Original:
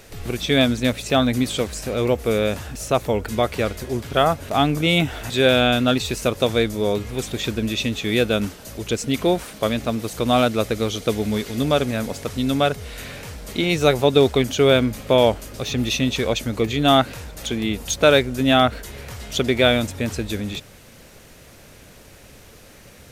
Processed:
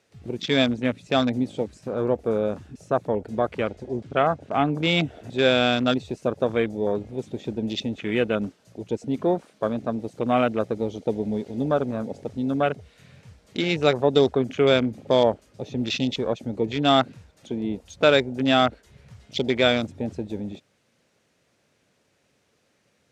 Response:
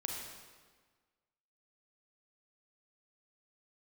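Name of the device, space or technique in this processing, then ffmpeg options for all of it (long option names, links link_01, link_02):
over-cleaned archive recording: -filter_complex "[0:a]asettb=1/sr,asplit=3[link_01][link_02][link_03];[link_01]atrim=end=3.634[link_04];[link_02]atrim=start=3.63:end=4.72,asetpts=PTS-STARTPTS,afade=type=in:duration=0.004:curve=qsin,afade=type=out:start_time=1.086:duration=0.004:curve=qsin,lowpass=8900[link_05];[link_03]atrim=start=4.716[link_06];[link_04][link_05]acrossfade=duration=0.004:curve1=hsin:curve2=qsin[link_07];[link_07][link_06]acrossfade=duration=0.004:curve1=qsin:curve2=hsin,highpass=130,lowpass=7800,afwtdn=0.0447,volume=-3dB"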